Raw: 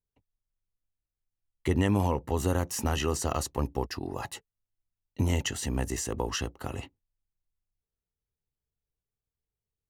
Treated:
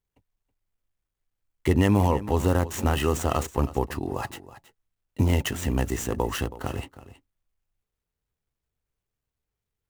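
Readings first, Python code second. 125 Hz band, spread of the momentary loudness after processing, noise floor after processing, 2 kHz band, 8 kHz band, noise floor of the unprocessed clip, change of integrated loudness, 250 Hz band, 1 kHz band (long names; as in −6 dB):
+5.0 dB, 12 LU, below −85 dBFS, +4.0 dB, −1.0 dB, below −85 dBFS, +4.5 dB, +5.0 dB, +5.0 dB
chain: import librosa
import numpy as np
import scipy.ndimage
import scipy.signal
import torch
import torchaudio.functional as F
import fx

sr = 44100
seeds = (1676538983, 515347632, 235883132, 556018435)

p1 = scipy.signal.medfilt(x, 9)
p2 = fx.high_shelf(p1, sr, hz=6500.0, db=7.0)
p3 = p2 + fx.echo_single(p2, sr, ms=323, db=-16.0, dry=0)
y = p3 * 10.0 ** (5.0 / 20.0)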